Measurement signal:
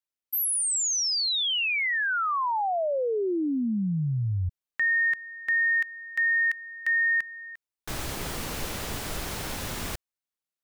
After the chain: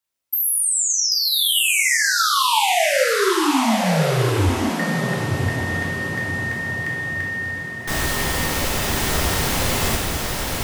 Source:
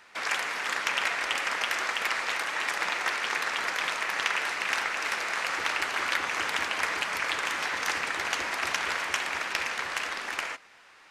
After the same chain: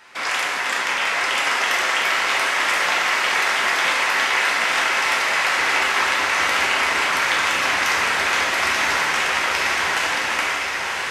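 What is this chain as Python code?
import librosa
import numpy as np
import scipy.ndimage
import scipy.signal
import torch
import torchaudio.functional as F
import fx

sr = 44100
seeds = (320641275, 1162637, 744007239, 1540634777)

y = fx.over_compress(x, sr, threshold_db=-28.0, ratio=-0.5)
y = fx.echo_diffused(y, sr, ms=1067, feedback_pct=51, wet_db=-3.0)
y = fx.rev_gated(y, sr, seeds[0], gate_ms=250, shape='falling', drr_db=-1.5)
y = F.gain(torch.from_numpy(y), 4.5).numpy()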